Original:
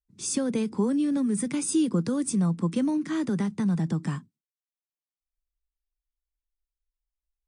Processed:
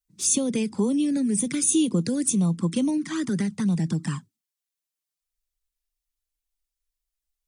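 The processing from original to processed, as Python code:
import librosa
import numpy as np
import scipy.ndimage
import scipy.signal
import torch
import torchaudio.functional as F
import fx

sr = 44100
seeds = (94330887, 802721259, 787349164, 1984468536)

y = fx.high_shelf(x, sr, hz=2600.0, db=10.5)
y = fx.env_flanger(y, sr, rest_ms=6.5, full_db=-21.0)
y = y * librosa.db_to_amplitude(2.0)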